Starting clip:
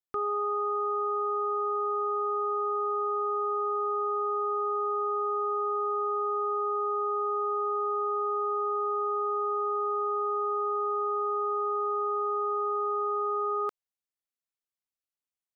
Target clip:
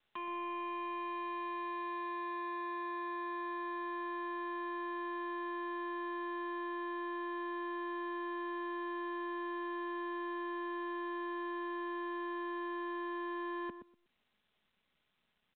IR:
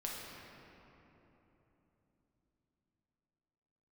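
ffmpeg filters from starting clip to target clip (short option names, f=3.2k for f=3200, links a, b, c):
-filter_complex "[0:a]aemphasis=mode=production:type=bsi,aecho=1:1:4:0.91,asubboost=boost=7.5:cutoff=250,acrossover=split=430[a][b];[b]acompressor=threshold=-36dB:ratio=12[c];[a][c]amix=inputs=2:normalize=0,asetrate=37084,aresample=44100,atempo=1.18921,asoftclip=type=hard:threshold=-39.5dB,asplit=2[d][e];[e]adelay=121,lowpass=f=870:p=1,volume=-7dB,asplit=2[f][g];[g]adelay=121,lowpass=f=870:p=1,volume=0.17,asplit=2[h][i];[i]adelay=121,lowpass=f=870:p=1,volume=0.17[j];[f][h][j]amix=inputs=3:normalize=0[k];[d][k]amix=inputs=2:normalize=0" -ar 8000 -c:a pcm_mulaw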